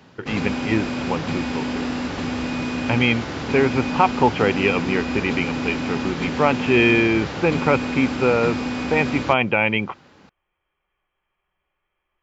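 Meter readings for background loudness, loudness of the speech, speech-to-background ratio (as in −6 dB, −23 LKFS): −26.0 LKFS, −21.0 LKFS, 5.0 dB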